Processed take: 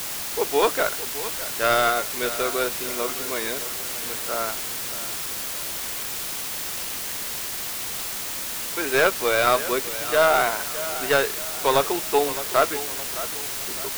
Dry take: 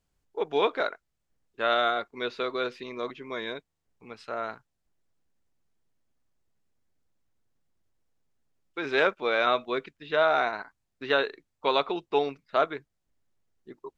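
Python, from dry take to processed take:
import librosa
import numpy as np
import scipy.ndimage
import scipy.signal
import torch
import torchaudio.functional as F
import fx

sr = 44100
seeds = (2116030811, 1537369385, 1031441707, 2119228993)

y = fx.tracing_dist(x, sr, depth_ms=0.16)
y = scipy.signal.sosfilt(scipy.signal.butter(2, 3500.0, 'lowpass', fs=sr, output='sos'), y)
y = fx.low_shelf(y, sr, hz=130.0, db=-9.5)
y = fx.quant_dither(y, sr, seeds[0], bits=6, dither='triangular')
y = fx.echo_feedback(y, sr, ms=613, feedback_pct=43, wet_db=-14)
y = y * 10.0 ** (5.5 / 20.0)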